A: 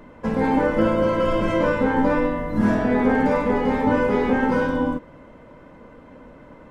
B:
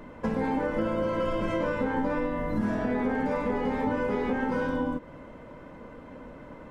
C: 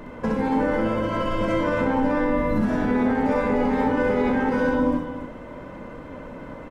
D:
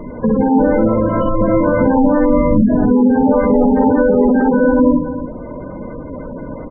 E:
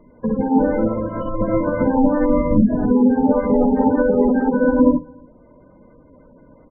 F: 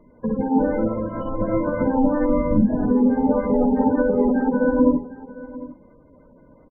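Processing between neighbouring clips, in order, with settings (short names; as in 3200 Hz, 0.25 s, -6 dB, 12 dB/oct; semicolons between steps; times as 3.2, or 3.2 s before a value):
compressor 4:1, threshold -26 dBFS, peak gain reduction 10.5 dB
limiter -21 dBFS, peak gain reduction 4.5 dB; on a send: loudspeakers at several distances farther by 22 m -4 dB, 97 m -9 dB; on the sum: gain +5.5 dB
spectral gate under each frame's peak -15 dB strong; tilt shelf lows +5 dB, about 1400 Hz; gain +6 dB
upward expander 2.5:1, over -22 dBFS
echo 0.753 s -17.5 dB; gain -3 dB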